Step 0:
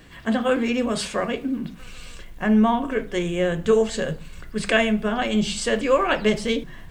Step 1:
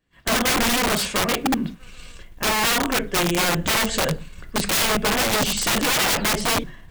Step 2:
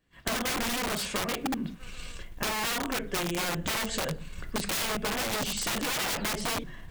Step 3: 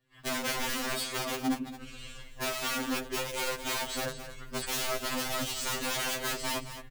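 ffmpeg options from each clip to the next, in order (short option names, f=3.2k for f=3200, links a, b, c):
-af "aeval=exprs='(mod(9.44*val(0)+1,2)-1)/9.44':c=same,agate=range=-33dB:threshold=-31dB:ratio=3:detection=peak,volume=4.5dB"
-af "acompressor=threshold=-29dB:ratio=6"
-filter_complex "[0:a]asplit=2[a][b];[b]aecho=0:1:217:0.266[c];[a][c]amix=inputs=2:normalize=0,afftfilt=real='re*2.45*eq(mod(b,6),0)':imag='im*2.45*eq(mod(b,6),0)':win_size=2048:overlap=0.75"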